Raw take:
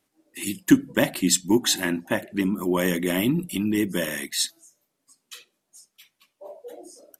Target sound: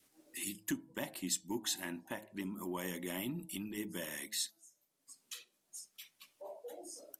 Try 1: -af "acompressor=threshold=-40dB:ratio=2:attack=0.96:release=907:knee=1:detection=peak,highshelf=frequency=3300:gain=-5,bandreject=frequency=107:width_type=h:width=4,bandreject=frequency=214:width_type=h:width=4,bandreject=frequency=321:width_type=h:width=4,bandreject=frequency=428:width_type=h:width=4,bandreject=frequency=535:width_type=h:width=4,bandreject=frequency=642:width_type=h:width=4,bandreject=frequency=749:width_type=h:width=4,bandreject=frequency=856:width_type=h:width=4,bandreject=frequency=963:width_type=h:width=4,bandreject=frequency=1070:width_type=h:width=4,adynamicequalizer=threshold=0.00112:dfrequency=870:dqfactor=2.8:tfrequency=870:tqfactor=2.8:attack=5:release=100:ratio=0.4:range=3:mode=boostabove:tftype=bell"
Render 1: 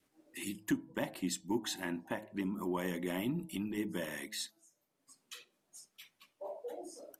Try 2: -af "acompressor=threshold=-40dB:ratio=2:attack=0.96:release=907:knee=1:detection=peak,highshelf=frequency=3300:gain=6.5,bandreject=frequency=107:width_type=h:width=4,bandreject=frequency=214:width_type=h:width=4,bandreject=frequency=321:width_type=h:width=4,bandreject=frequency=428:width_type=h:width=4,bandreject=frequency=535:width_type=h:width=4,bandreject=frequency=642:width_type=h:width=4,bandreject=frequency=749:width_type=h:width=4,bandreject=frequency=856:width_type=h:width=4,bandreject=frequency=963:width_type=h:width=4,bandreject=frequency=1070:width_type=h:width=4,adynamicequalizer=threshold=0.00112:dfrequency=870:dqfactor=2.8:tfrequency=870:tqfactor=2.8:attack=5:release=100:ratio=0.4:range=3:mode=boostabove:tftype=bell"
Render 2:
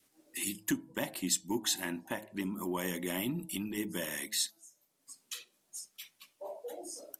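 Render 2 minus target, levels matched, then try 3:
downward compressor: peak gain reduction −5 dB
-af "acompressor=threshold=-50dB:ratio=2:attack=0.96:release=907:knee=1:detection=peak,highshelf=frequency=3300:gain=6.5,bandreject=frequency=107:width_type=h:width=4,bandreject=frequency=214:width_type=h:width=4,bandreject=frequency=321:width_type=h:width=4,bandreject=frequency=428:width_type=h:width=4,bandreject=frequency=535:width_type=h:width=4,bandreject=frequency=642:width_type=h:width=4,bandreject=frequency=749:width_type=h:width=4,bandreject=frequency=856:width_type=h:width=4,bandreject=frequency=963:width_type=h:width=4,bandreject=frequency=1070:width_type=h:width=4,adynamicequalizer=threshold=0.00112:dfrequency=870:dqfactor=2.8:tfrequency=870:tqfactor=2.8:attack=5:release=100:ratio=0.4:range=3:mode=boostabove:tftype=bell"

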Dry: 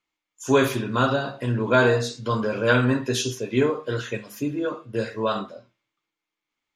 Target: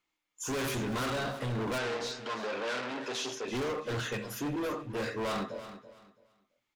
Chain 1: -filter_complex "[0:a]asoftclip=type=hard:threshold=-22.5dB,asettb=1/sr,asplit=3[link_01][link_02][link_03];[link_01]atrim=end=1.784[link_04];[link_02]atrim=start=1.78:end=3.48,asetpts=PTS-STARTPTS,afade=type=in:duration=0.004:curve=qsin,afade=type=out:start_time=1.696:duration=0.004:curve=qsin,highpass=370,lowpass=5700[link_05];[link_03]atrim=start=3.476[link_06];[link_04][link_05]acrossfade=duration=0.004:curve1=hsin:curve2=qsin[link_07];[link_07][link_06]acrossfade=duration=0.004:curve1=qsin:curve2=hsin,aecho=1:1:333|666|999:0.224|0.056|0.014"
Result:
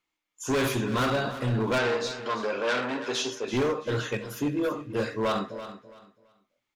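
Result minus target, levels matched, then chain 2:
hard clipping: distortion −4 dB
-filter_complex "[0:a]asoftclip=type=hard:threshold=-31.5dB,asettb=1/sr,asplit=3[link_01][link_02][link_03];[link_01]atrim=end=1.784[link_04];[link_02]atrim=start=1.78:end=3.48,asetpts=PTS-STARTPTS,afade=type=in:duration=0.004:curve=qsin,afade=type=out:start_time=1.696:duration=0.004:curve=qsin,highpass=370,lowpass=5700[link_05];[link_03]atrim=start=3.476[link_06];[link_04][link_05]acrossfade=duration=0.004:curve1=hsin:curve2=qsin[link_07];[link_07][link_06]acrossfade=duration=0.004:curve1=qsin:curve2=hsin,aecho=1:1:333|666|999:0.224|0.056|0.014"

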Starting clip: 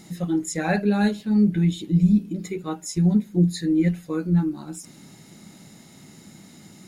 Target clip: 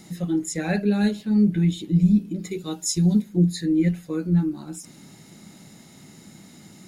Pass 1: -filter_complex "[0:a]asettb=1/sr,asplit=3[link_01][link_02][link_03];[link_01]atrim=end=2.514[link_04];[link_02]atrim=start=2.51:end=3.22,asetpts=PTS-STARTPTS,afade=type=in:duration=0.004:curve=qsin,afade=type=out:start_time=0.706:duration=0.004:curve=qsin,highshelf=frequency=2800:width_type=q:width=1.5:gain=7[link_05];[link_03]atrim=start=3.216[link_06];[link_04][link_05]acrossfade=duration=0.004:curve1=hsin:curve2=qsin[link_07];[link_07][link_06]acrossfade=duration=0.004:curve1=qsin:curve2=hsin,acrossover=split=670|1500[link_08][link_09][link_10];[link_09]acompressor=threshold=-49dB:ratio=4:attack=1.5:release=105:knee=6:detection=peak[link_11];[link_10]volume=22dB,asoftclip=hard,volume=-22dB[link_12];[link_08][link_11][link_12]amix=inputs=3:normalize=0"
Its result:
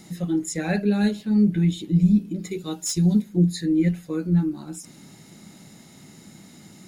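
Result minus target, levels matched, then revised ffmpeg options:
gain into a clipping stage and back: distortion +30 dB
-filter_complex "[0:a]asettb=1/sr,asplit=3[link_01][link_02][link_03];[link_01]atrim=end=2.514[link_04];[link_02]atrim=start=2.51:end=3.22,asetpts=PTS-STARTPTS,afade=type=in:duration=0.004:curve=qsin,afade=type=out:start_time=0.706:duration=0.004:curve=qsin,highshelf=frequency=2800:width_type=q:width=1.5:gain=7[link_05];[link_03]atrim=start=3.216[link_06];[link_04][link_05]acrossfade=duration=0.004:curve1=hsin:curve2=qsin[link_07];[link_07][link_06]acrossfade=duration=0.004:curve1=qsin:curve2=hsin,acrossover=split=670|1500[link_08][link_09][link_10];[link_09]acompressor=threshold=-49dB:ratio=4:attack=1.5:release=105:knee=6:detection=peak[link_11];[link_10]volume=14dB,asoftclip=hard,volume=-14dB[link_12];[link_08][link_11][link_12]amix=inputs=3:normalize=0"

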